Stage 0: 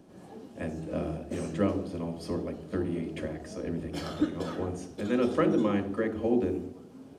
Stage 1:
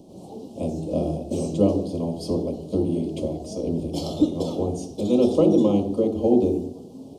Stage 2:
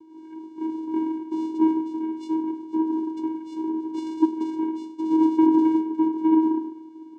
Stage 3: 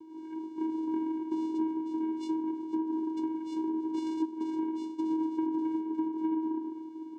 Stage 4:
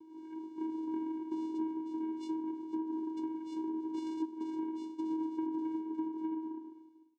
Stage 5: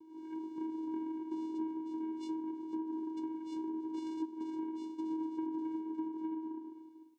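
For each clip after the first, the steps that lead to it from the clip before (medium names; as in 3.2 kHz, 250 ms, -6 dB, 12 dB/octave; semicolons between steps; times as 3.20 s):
Chebyshev band-stop 750–3700 Hz, order 2; trim +8.5 dB
vocoder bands 4, square 319 Hz
compression 6:1, threshold -29 dBFS, peak gain reduction 15 dB
fade out at the end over 1.06 s; trim -5 dB
recorder AGC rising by 14 dB/s; trim -2 dB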